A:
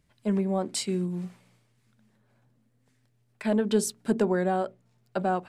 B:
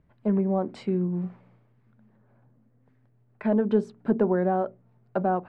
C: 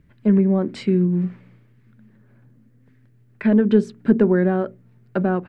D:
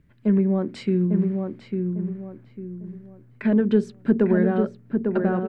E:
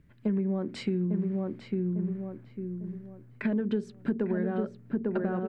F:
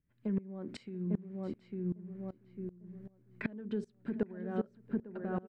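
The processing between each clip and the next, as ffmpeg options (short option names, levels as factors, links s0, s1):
-filter_complex "[0:a]lowpass=1300,asplit=2[s0][s1];[s1]acompressor=threshold=0.0224:ratio=6,volume=0.891[s2];[s0][s2]amix=inputs=2:normalize=0"
-af "firequalizer=gain_entry='entry(310,0);entry(740,-12);entry(1700,2)':delay=0.05:min_phase=1,volume=2.66"
-filter_complex "[0:a]asplit=2[s0][s1];[s1]adelay=850,lowpass=f=1700:p=1,volume=0.596,asplit=2[s2][s3];[s3]adelay=850,lowpass=f=1700:p=1,volume=0.34,asplit=2[s4][s5];[s5]adelay=850,lowpass=f=1700:p=1,volume=0.34,asplit=2[s6][s7];[s7]adelay=850,lowpass=f=1700:p=1,volume=0.34[s8];[s0][s2][s4][s6][s8]amix=inputs=5:normalize=0,volume=0.668"
-af "acompressor=threshold=0.0562:ratio=5,volume=0.891"
-af "aecho=1:1:685:0.1,aeval=exprs='val(0)*pow(10,-22*if(lt(mod(-2.6*n/s,1),2*abs(-2.6)/1000),1-mod(-2.6*n/s,1)/(2*abs(-2.6)/1000),(mod(-2.6*n/s,1)-2*abs(-2.6)/1000)/(1-2*abs(-2.6)/1000))/20)':c=same,volume=0.841"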